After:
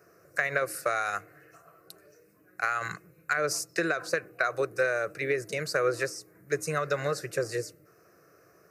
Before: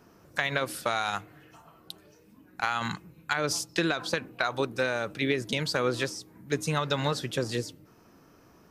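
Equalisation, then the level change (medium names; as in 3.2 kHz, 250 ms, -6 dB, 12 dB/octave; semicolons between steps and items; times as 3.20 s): high-pass 150 Hz 12 dB/octave; static phaser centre 900 Hz, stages 6; +2.5 dB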